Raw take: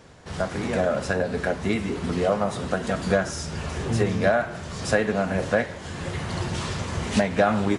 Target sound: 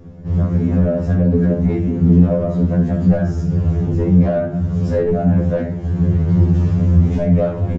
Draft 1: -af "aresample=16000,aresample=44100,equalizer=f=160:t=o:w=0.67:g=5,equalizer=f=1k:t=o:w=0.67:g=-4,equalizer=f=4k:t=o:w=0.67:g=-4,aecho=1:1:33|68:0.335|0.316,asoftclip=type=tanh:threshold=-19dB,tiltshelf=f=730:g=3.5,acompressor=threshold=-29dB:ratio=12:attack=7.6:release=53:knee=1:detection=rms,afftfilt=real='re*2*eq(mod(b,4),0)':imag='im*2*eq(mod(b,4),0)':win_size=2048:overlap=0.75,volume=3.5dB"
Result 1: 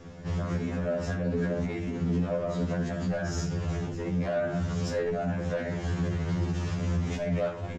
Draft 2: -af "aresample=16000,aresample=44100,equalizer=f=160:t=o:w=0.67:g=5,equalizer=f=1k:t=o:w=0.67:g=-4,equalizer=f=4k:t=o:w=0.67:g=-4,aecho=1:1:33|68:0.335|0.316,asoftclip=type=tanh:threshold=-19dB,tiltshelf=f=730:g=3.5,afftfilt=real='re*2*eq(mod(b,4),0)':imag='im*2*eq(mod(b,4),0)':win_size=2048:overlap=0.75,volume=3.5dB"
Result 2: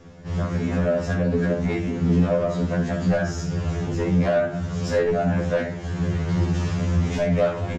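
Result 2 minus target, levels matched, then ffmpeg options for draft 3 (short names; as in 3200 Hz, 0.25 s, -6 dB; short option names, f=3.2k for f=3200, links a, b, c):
1000 Hz band +8.0 dB
-af "aresample=16000,aresample=44100,equalizer=f=160:t=o:w=0.67:g=5,equalizer=f=1k:t=o:w=0.67:g=-4,equalizer=f=4k:t=o:w=0.67:g=-4,aecho=1:1:33|68:0.335|0.316,asoftclip=type=tanh:threshold=-19dB,tiltshelf=f=730:g=13.5,afftfilt=real='re*2*eq(mod(b,4),0)':imag='im*2*eq(mod(b,4),0)':win_size=2048:overlap=0.75,volume=3.5dB"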